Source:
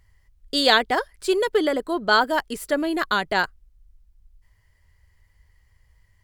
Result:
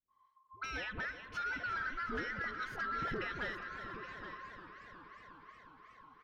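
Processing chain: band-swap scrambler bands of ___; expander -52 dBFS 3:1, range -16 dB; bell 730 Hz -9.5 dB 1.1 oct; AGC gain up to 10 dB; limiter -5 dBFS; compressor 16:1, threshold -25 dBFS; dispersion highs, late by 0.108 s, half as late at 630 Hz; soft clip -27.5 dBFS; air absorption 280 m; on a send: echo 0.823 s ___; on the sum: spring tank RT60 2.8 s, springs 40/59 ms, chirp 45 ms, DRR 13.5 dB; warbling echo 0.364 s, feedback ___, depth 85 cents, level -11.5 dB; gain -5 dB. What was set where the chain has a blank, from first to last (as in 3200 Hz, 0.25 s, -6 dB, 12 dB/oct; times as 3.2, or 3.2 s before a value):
1000 Hz, -11 dB, 73%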